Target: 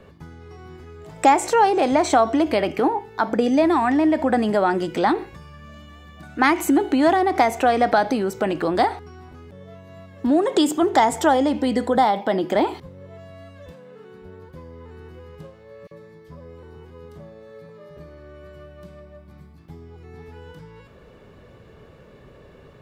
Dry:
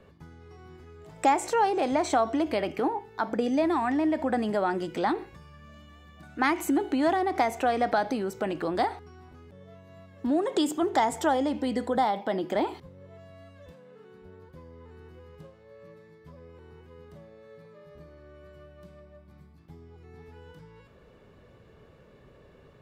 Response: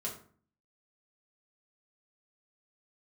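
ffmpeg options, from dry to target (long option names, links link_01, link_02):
-filter_complex "[0:a]asettb=1/sr,asplit=3[link_01][link_02][link_03];[link_01]atrim=end=15.874[link_04];[link_02]atrim=start=15.87:end=17.97,asetpts=PTS-STARTPTS,afade=type=in:duration=0.004:curve=qsin,afade=type=out:start_time=2.096:duration=0.004:curve=qsin,acrossover=split=2300[link_05][link_06];[link_05]adelay=40[link_07];[link_07][link_06]amix=inputs=2:normalize=0,atrim=end_sample=92610[link_08];[link_03]atrim=start=17.966[link_09];[link_04][link_08]acrossfade=duration=0.004:curve1=hsin:curve2=qsin[link_10];[link_10][link_09]acrossfade=duration=0.004:curve1=qsin:curve2=hsin,volume=7.5dB"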